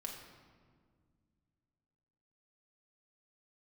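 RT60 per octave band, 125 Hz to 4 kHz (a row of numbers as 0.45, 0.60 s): 3.1, 2.9, 2.0, 1.7, 1.4, 1.1 s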